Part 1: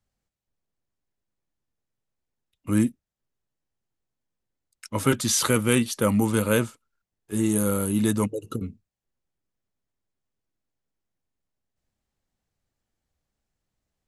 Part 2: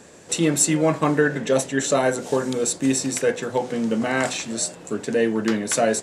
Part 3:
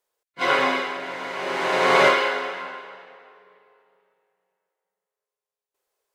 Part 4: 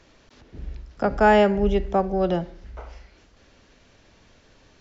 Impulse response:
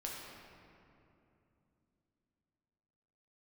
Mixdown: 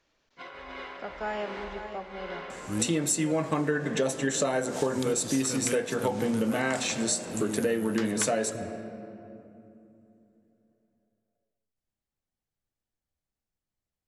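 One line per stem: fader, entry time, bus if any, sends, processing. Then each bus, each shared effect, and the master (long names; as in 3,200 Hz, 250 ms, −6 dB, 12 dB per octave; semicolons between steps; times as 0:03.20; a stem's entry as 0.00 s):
−11.0 dB, 0.00 s, send −9.5 dB, no echo send, no processing
+0.5 dB, 2.50 s, send −12 dB, no echo send, no processing
−16.5 dB, 0.00 s, no send, echo send −14 dB, low-pass filter 5,400 Hz 12 dB per octave; compressor whose output falls as the input rises −26 dBFS, ratio −1
−16.5 dB, 0.00 s, send −7 dB, echo send −8.5 dB, low-shelf EQ 350 Hz −9.5 dB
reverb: on, RT60 2.9 s, pre-delay 6 ms
echo: single-tap delay 540 ms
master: downward compressor 6 to 1, threshold −24 dBFS, peak gain reduction 12.5 dB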